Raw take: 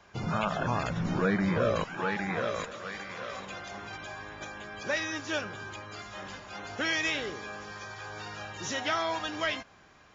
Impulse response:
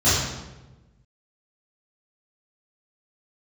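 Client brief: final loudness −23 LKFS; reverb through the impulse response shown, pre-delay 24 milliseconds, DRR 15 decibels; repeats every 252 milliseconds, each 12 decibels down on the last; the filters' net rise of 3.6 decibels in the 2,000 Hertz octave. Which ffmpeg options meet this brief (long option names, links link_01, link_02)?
-filter_complex "[0:a]equalizer=frequency=2000:width_type=o:gain=4.5,aecho=1:1:252|504|756:0.251|0.0628|0.0157,asplit=2[link_01][link_02];[1:a]atrim=start_sample=2205,adelay=24[link_03];[link_02][link_03]afir=irnorm=-1:irlink=0,volume=-34.5dB[link_04];[link_01][link_04]amix=inputs=2:normalize=0,volume=7.5dB"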